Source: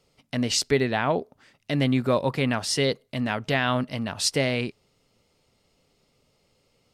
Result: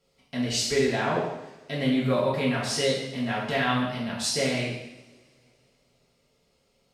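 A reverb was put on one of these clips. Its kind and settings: two-slope reverb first 0.88 s, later 3.3 s, from -27 dB, DRR -6.5 dB; gain -8.5 dB

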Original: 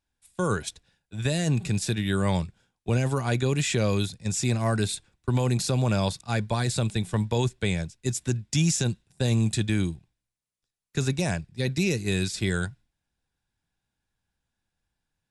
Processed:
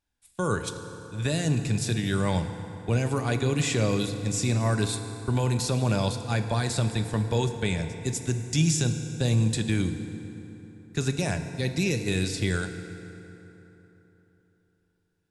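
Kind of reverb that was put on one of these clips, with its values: FDN reverb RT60 3.6 s, high-frequency decay 0.6×, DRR 7 dB; gain -1 dB

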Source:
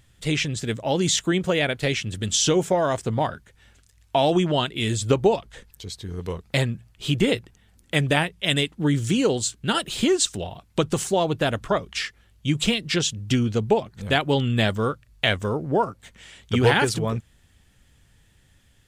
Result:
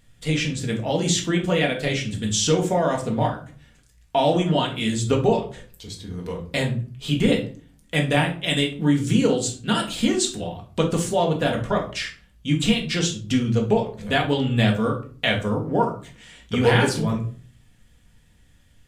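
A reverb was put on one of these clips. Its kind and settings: shoebox room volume 320 m³, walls furnished, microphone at 1.8 m; gain -3 dB

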